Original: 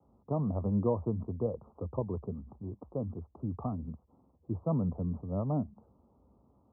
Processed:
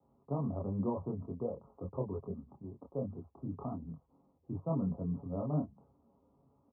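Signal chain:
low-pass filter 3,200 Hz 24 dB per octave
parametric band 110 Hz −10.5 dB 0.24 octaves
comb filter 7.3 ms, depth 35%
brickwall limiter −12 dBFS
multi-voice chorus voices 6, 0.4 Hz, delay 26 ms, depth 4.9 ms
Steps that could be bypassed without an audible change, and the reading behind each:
low-pass filter 3,200 Hz: nothing at its input above 1,200 Hz
brickwall limiter −12 dBFS: peak of its input −18.5 dBFS

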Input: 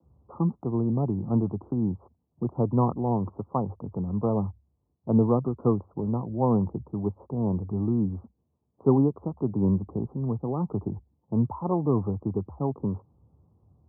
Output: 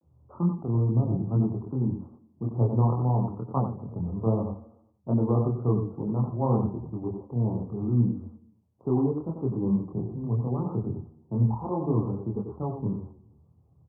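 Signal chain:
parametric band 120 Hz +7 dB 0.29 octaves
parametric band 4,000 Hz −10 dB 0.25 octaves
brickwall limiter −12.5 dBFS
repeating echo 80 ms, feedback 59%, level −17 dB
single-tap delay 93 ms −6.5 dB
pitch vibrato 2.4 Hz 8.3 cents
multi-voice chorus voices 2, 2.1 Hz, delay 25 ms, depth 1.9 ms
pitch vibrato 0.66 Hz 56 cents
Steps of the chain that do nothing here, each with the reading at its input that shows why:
parametric band 4,000 Hz: nothing at its input above 1,100 Hz

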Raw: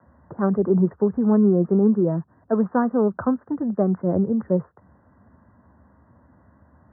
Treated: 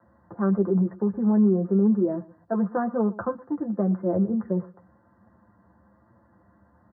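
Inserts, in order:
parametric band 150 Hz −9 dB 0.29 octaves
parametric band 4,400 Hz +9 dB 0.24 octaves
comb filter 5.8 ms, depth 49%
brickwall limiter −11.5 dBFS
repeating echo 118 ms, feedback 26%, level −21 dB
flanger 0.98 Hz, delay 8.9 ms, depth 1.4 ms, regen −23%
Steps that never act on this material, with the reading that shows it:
parametric band 4,400 Hz: nothing at its input above 1,500 Hz

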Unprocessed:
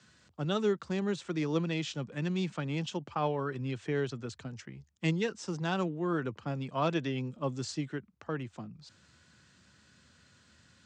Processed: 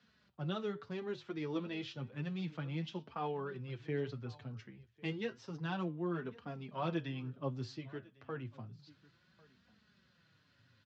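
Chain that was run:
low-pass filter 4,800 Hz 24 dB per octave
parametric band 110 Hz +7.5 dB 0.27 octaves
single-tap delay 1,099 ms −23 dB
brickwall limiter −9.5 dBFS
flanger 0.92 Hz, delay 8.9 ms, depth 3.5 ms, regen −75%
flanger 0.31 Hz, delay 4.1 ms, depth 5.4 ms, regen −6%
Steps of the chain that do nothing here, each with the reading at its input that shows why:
brickwall limiter −9.5 dBFS: peak of its input −17.0 dBFS

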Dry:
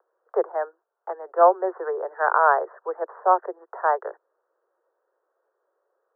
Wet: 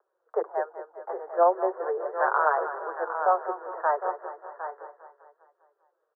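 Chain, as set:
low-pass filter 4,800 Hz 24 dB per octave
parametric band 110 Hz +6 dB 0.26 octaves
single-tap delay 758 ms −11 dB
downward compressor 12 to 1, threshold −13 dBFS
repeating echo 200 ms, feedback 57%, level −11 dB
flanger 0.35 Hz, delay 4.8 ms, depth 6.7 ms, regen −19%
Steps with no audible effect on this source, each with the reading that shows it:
low-pass filter 4,800 Hz: nothing at its input above 1,900 Hz
parametric band 110 Hz: nothing at its input below 320 Hz

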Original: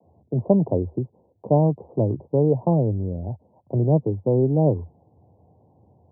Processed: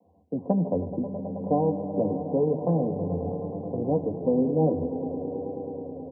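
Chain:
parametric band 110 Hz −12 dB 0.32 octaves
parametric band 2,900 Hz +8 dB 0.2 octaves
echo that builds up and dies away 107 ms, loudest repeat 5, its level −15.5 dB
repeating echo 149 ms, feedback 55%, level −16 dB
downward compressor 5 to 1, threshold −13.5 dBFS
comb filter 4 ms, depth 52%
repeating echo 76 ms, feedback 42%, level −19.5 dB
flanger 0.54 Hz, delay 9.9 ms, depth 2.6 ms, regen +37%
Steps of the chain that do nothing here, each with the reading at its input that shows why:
parametric band 2,900 Hz: nothing at its input above 960 Hz

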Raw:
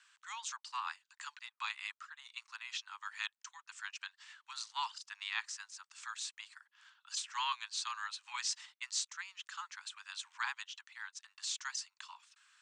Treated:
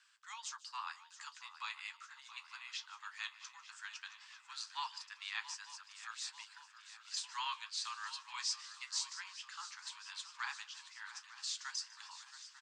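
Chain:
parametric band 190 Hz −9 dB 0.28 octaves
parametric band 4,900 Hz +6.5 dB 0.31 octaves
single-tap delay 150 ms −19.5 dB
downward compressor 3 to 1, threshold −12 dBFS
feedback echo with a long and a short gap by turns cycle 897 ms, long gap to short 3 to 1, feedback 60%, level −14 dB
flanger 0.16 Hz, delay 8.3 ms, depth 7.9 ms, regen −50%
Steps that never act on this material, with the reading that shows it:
parametric band 190 Hz: nothing at its input below 680 Hz
downward compressor, threshold −12 dBFS: peak of its input −17.0 dBFS

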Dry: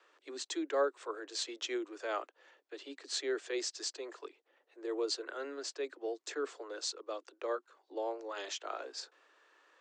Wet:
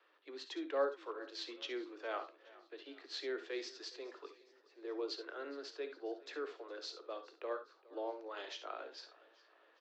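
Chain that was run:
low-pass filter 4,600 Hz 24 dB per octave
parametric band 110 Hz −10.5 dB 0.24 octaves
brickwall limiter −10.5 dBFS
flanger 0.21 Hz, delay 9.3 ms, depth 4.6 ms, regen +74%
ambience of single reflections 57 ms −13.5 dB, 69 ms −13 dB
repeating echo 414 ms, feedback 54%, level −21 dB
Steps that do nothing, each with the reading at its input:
parametric band 110 Hz: nothing at its input below 240 Hz
brickwall limiter −10.5 dBFS: peak of its input −20.0 dBFS

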